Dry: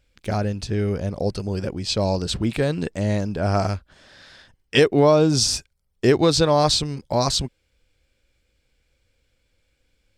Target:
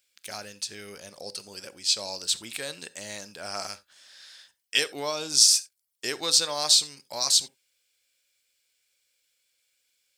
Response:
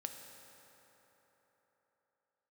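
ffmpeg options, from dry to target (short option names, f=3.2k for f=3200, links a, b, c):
-filter_complex "[0:a]aderivative,asplit=2[a][b];[1:a]atrim=start_sample=2205,atrim=end_sample=3969[c];[b][c]afir=irnorm=-1:irlink=0,volume=3dB[d];[a][d]amix=inputs=2:normalize=0"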